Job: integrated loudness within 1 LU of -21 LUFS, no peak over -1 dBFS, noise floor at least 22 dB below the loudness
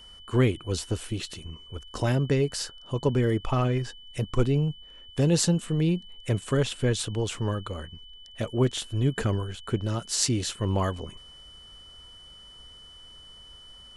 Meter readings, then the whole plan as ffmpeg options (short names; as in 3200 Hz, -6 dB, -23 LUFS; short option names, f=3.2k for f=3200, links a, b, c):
steady tone 3000 Hz; tone level -47 dBFS; loudness -27.5 LUFS; peak -6.0 dBFS; loudness target -21.0 LUFS
-> -af "bandreject=f=3k:w=30"
-af "volume=6.5dB,alimiter=limit=-1dB:level=0:latency=1"